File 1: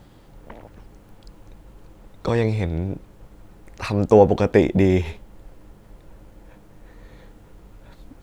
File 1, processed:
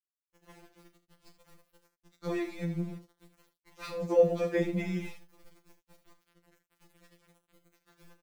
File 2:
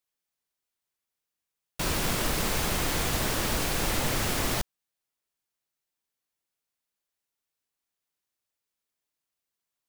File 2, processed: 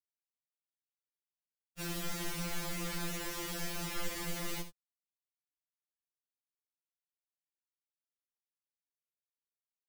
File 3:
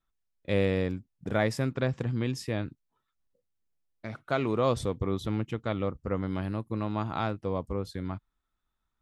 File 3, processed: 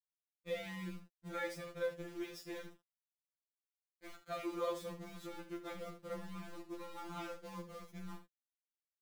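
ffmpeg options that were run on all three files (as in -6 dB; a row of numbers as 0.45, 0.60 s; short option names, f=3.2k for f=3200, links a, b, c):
-filter_complex "[0:a]equalizer=f=2.1k:w=6.8:g=2,aeval=exprs='val(0)*gte(abs(val(0)),0.0141)':c=same,equalizer=f=750:w=1.9:g=-4,asplit=2[a][b];[b]aecho=0:1:35|75:0.282|0.251[c];[a][c]amix=inputs=2:normalize=0,afftfilt=real='re*2.83*eq(mod(b,8),0)':imag='im*2.83*eq(mod(b,8),0)':win_size=2048:overlap=0.75,volume=-9dB"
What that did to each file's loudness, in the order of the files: -11.5, -11.0, -14.0 LU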